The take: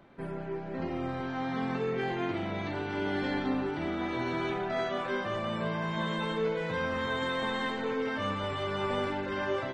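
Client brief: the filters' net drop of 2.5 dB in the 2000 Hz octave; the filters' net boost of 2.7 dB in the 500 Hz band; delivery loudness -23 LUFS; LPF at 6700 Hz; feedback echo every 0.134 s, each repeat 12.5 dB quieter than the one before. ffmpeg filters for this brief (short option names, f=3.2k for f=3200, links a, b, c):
-af "lowpass=6.7k,equalizer=f=500:t=o:g=3.5,equalizer=f=2k:t=o:g=-3.5,aecho=1:1:134|268|402:0.237|0.0569|0.0137,volume=8.5dB"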